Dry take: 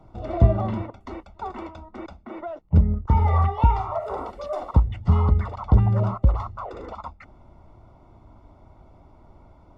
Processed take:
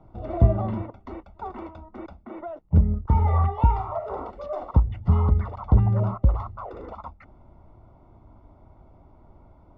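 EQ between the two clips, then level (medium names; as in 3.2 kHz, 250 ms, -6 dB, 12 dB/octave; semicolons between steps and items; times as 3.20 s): distance through air 83 m; treble shelf 2.1 kHz -7.5 dB; -1.0 dB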